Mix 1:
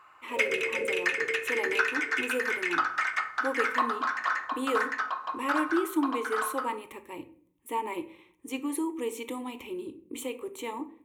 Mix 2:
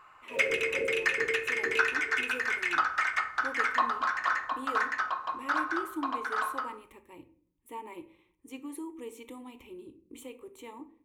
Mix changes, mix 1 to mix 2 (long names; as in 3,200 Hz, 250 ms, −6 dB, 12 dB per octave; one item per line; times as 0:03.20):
speech −10.5 dB
master: remove high-pass filter 210 Hz 6 dB per octave